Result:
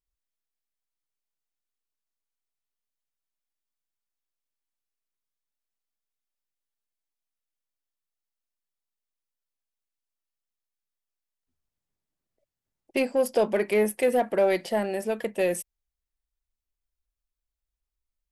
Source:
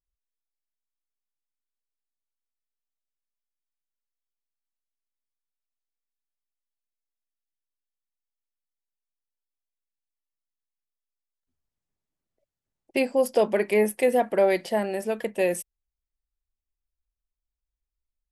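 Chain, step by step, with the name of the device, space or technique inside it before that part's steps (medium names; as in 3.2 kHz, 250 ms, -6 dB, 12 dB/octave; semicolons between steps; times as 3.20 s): parallel distortion (in parallel at -8 dB: hard clipper -23.5 dBFS, distortion -7 dB); on the sum: trim -3 dB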